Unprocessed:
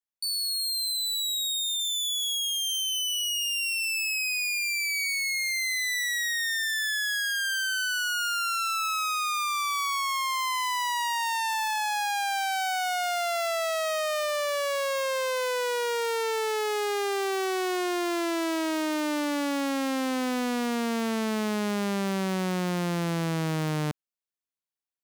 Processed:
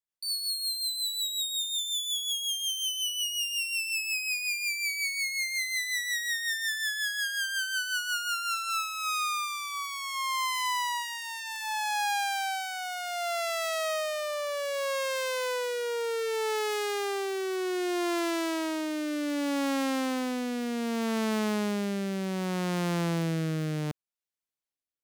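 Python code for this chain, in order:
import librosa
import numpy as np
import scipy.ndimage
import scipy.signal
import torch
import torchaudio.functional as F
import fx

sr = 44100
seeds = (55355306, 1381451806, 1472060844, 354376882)

y = fx.rotary_switch(x, sr, hz=5.5, then_hz=0.65, switch_at_s=8.34)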